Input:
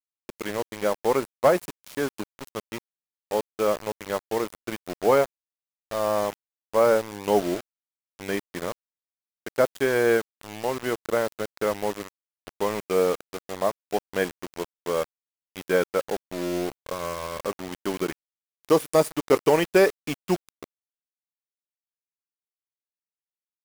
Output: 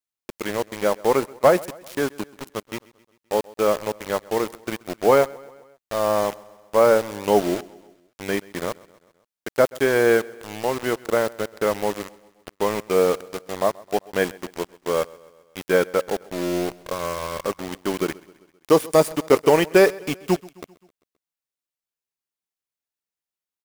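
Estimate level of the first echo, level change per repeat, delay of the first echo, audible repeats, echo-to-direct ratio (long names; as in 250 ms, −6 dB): −22.5 dB, −5.0 dB, 131 ms, 3, −21.0 dB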